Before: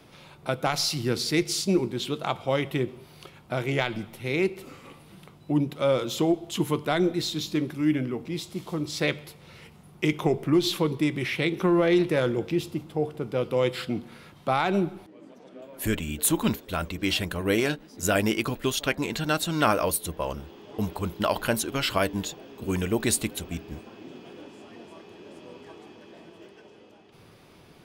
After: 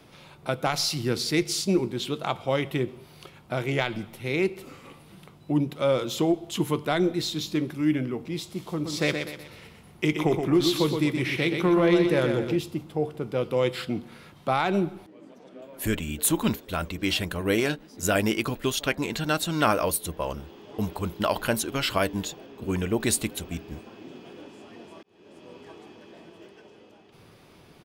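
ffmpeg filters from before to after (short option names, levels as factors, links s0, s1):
-filter_complex "[0:a]asplit=3[s0][s1][s2];[s0]afade=t=out:st=8.84:d=0.02[s3];[s1]aecho=1:1:123|246|369|492|615:0.501|0.2|0.0802|0.0321|0.0128,afade=t=in:st=8.84:d=0.02,afade=t=out:st=12.56:d=0.02[s4];[s2]afade=t=in:st=12.56:d=0.02[s5];[s3][s4][s5]amix=inputs=3:normalize=0,asettb=1/sr,asplit=3[s6][s7][s8];[s6]atrim=end=22.464[s9];[s7]atrim=start=22.46:end=23.01,asetpts=PTS-STARTPTS,afade=t=in:d=0.004:c=qsin,afade=t=out:st=0.546:d=0.004:c=qsin,highshelf=f=4600:g=-6.5[s10];[s8]atrim=start=23.006[s11];[s9][s10]acrossfade=d=0.004:c1=hsin:c2=qsin[s12];[s12][s11]acrossfade=d=0.004:c1=qsin:c2=hsin,asplit=2[s13][s14];[s13]atrim=end=25.03,asetpts=PTS-STARTPTS,afade=t=out:st=25.026:d=0.004:c=hsin[s15];[s14]atrim=start=25.03,asetpts=PTS-STARTPTS,afade=t=in:d=0.72:c=qsin[s16];[s15][s16]concat=n=2:v=0:a=1"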